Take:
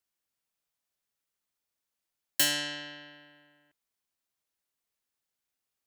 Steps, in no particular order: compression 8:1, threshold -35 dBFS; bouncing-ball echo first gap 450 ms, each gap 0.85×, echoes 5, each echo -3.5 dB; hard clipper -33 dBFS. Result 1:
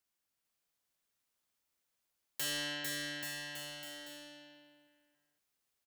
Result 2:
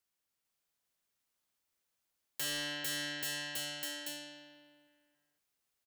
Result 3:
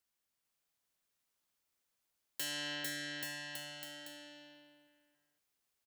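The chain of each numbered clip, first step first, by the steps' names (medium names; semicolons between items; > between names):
hard clipper > compression > bouncing-ball echo; bouncing-ball echo > hard clipper > compression; compression > bouncing-ball echo > hard clipper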